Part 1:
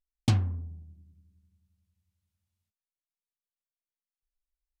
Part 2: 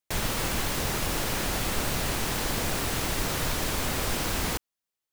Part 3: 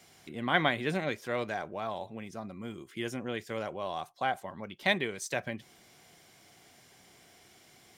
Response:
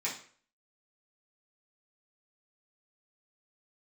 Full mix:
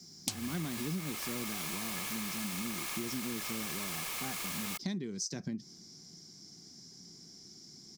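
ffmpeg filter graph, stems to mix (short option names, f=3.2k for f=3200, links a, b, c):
-filter_complex "[0:a]bass=f=250:g=-13,treble=f=4k:g=14,volume=0.5dB[a];[1:a]lowshelf=f=340:t=q:w=3:g=-9,aeval=exprs='val(0)*sin(2*PI*1700*n/s)':c=same,adelay=200,volume=-7dB[b];[2:a]firequalizer=gain_entry='entry(110,0);entry(170,12);entry(390,1);entry(570,-14);entry(1000,-10);entry(2900,-19);entry(5100,10);entry(9400,-17)':delay=0.05:min_phase=1,volume=-0.5dB[c];[a][b][c]amix=inputs=3:normalize=0,highshelf=f=3.7k:g=9,acompressor=threshold=-34dB:ratio=6"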